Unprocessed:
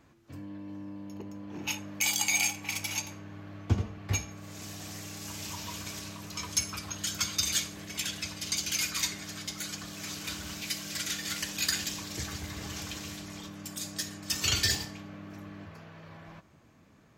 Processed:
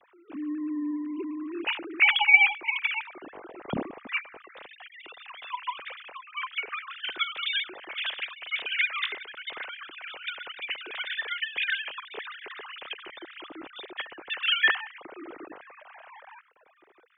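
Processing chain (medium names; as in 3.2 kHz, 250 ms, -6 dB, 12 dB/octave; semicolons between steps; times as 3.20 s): formants replaced by sine waves; trim +4 dB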